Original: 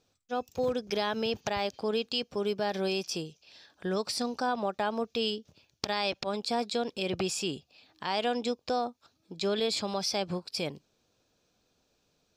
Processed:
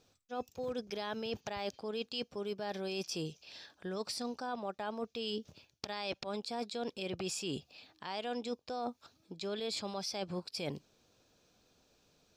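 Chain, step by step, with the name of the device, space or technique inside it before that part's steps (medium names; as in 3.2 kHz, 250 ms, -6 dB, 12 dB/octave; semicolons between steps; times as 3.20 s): compression on the reversed sound (reverse; compression 12:1, threshold -38 dBFS, peak gain reduction 14 dB; reverse); trim +3 dB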